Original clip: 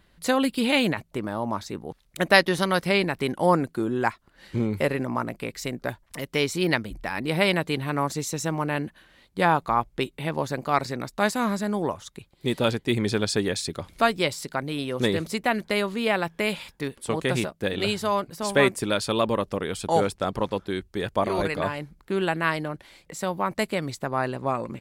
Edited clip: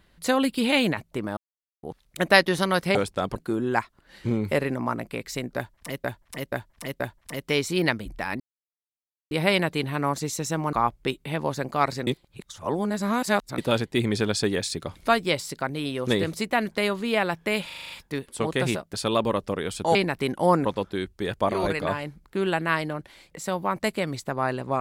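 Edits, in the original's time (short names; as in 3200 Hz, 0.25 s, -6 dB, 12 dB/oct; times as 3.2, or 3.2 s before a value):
1.37–1.83 mute
2.95–3.65 swap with 19.99–20.4
5.85–6.33 loop, 4 plays
7.25 insert silence 0.91 s
8.67–9.66 cut
11–12.51 reverse
16.59 stutter 0.04 s, 7 plays
17.63–18.98 cut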